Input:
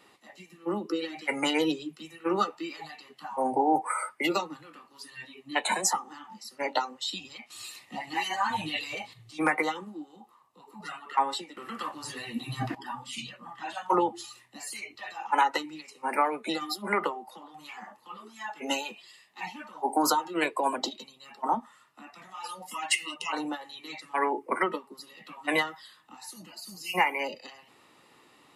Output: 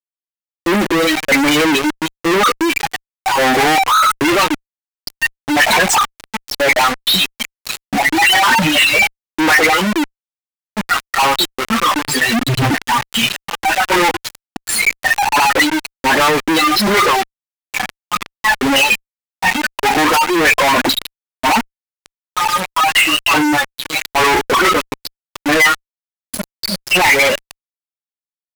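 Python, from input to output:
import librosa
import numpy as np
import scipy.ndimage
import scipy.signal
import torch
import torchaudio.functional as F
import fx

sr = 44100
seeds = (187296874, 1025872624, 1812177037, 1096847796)

y = fx.bin_expand(x, sr, power=1.5)
y = scipy.signal.sosfilt(scipy.signal.butter(2, 130.0, 'highpass', fs=sr, output='sos'), y)
y = fx.high_shelf(y, sr, hz=2700.0, db=-9.5)
y = fx.dispersion(y, sr, late='highs', ms=63.0, hz=1300.0)
y = fx.spec_gate(y, sr, threshold_db=-20, keep='strong')
y = fx.leveller(y, sr, passes=5)
y = fx.fuzz(y, sr, gain_db=57.0, gate_db=-53.0)
y = fx.dynamic_eq(y, sr, hz=2000.0, q=0.91, threshold_db=-31.0, ratio=4.0, max_db=6)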